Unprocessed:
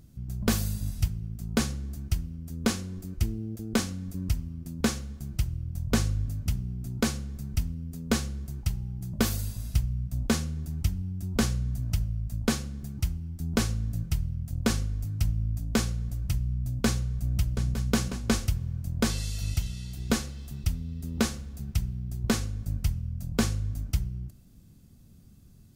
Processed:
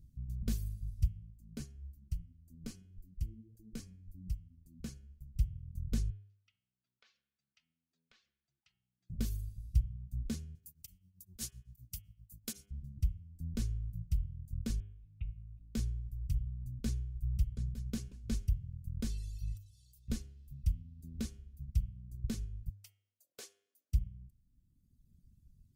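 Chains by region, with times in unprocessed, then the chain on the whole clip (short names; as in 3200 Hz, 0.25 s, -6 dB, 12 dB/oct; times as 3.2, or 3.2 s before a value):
1.31–5.35 notch 3600 Hz, Q 8.8 + flange 1.8 Hz, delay 1.6 ms, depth 5.7 ms, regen +49%
6.1–9.1 Butterworth band-pass 2000 Hz, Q 0.68 + air absorption 80 m + compressor 2.5:1, threshold -48 dBFS
10.55–12.71 RIAA curve recording + beating tremolo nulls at 7.8 Hz
14.8–15.75 rippled Chebyshev low-pass 3800 Hz, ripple 9 dB + bell 2300 Hz +13 dB 0.3 oct
19.57–20.08 tilt +2 dB/oct + fixed phaser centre 650 Hz, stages 4 + level quantiser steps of 23 dB
22.7–23.93 steep high-pass 410 Hz + hard clip -22 dBFS
whole clip: reverb removal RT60 1.9 s; passive tone stack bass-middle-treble 10-0-1; de-hum 100 Hz, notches 34; gain +5 dB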